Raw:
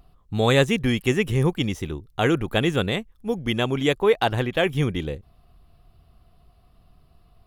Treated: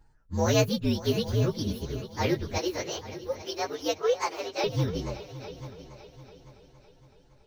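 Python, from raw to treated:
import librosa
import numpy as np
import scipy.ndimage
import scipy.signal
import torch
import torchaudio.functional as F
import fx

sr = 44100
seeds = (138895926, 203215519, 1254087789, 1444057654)

y = fx.partial_stretch(x, sr, pct=120)
y = fx.ellip_highpass(y, sr, hz=320.0, order=4, stop_db=40, at=(2.58, 4.64))
y = fx.echo_heads(y, sr, ms=280, heads='second and third', feedback_pct=42, wet_db=-15.5)
y = F.gain(torch.from_numpy(y), -3.0).numpy()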